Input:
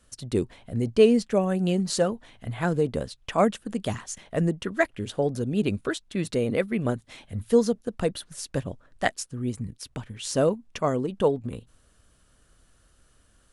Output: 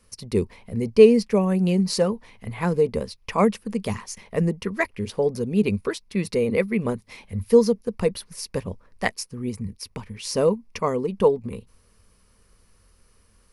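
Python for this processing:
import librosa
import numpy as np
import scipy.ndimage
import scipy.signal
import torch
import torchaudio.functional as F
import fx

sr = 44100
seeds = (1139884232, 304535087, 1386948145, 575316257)

y = fx.ripple_eq(x, sr, per_octave=0.86, db=9)
y = y * librosa.db_to_amplitude(1.0)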